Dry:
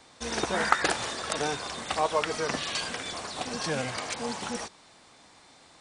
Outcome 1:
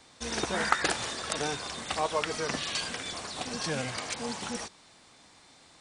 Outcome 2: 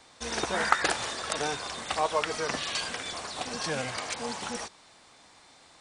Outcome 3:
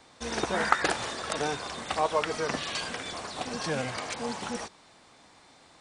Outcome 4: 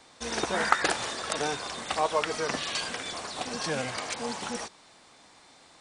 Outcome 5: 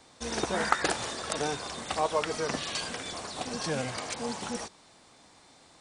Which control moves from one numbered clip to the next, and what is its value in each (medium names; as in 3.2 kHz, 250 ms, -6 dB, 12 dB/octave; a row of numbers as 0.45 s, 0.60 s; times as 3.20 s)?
peaking EQ, frequency: 750 Hz, 200 Hz, 13 kHz, 78 Hz, 2 kHz